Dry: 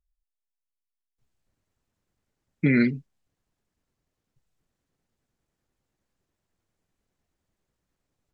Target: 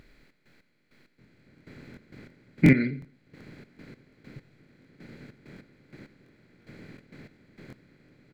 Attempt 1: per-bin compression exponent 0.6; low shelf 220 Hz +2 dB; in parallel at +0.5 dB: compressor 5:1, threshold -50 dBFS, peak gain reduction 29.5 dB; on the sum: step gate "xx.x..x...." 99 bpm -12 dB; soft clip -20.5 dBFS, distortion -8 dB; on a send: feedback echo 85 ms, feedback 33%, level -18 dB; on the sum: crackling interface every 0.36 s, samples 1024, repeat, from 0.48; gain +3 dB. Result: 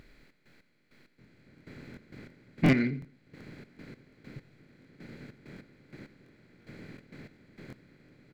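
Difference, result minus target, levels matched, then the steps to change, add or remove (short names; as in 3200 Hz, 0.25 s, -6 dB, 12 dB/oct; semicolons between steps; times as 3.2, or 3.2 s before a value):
soft clip: distortion +16 dB
change: soft clip -8.5 dBFS, distortion -24 dB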